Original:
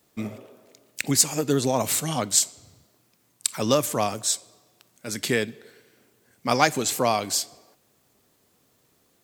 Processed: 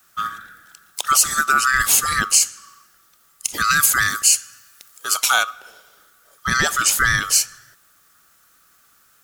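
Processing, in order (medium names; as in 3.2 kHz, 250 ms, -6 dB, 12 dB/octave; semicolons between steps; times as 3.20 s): split-band scrambler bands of 1 kHz; 3.64–5.43 s: tilt EQ +1.5 dB/octave; peak limiter -12 dBFS, peak gain reduction 9 dB; treble shelf 5.5 kHz +6 dB; trim +5.5 dB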